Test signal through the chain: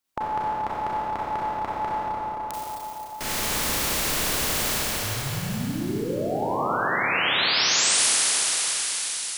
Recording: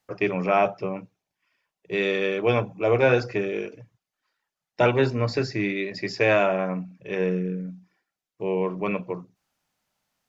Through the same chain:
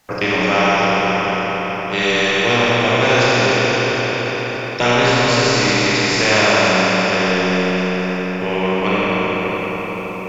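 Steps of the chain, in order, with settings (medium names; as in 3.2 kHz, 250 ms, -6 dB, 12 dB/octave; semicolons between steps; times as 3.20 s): Schroeder reverb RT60 3.7 s, combs from 29 ms, DRR -8.5 dB; spectrum-flattening compressor 2:1; trim -1 dB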